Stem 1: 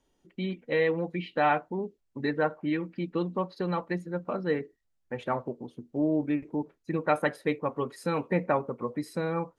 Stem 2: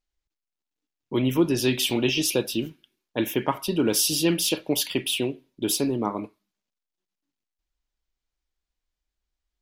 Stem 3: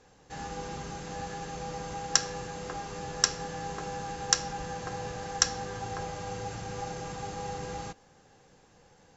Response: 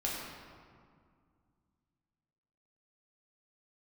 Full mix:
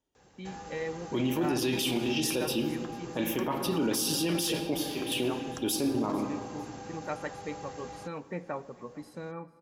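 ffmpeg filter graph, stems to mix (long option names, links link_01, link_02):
-filter_complex "[0:a]volume=-11dB,asplit=4[link_01][link_02][link_03][link_04];[link_02]volume=-20dB[link_05];[link_03]volume=-22dB[link_06];[1:a]volume=-5.5dB,asplit=3[link_07][link_08][link_09];[link_08]volume=-7.5dB[link_10];[link_09]volume=-23.5dB[link_11];[2:a]acrossover=split=310|1200[link_12][link_13][link_14];[link_12]acompressor=threshold=-49dB:ratio=4[link_15];[link_13]acompressor=threshold=-42dB:ratio=4[link_16];[link_14]acompressor=threshold=-50dB:ratio=4[link_17];[link_15][link_16][link_17]amix=inputs=3:normalize=0,adelay=150,volume=-1.5dB[link_18];[link_04]apad=whole_len=424128[link_19];[link_07][link_19]sidechaingate=range=-33dB:threshold=-58dB:ratio=16:detection=peak[link_20];[3:a]atrim=start_sample=2205[link_21];[link_05][link_10]amix=inputs=2:normalize=0[link_22];[link_22][link_21]afir=irnorm=-1:irlink=0[link_23];[link_06][link_11]amix=inputs=2:normalize=0,aecho=0:1:448|896|1344|1792:1|0.31|0.0961|0.0298[link_24];[link_01][link_20][link_18][link_23][link_24]amix=inputs=5:normalize=0,highpass=40,alimiter=limit=-20.5dB:level=0:latency=1:release=19"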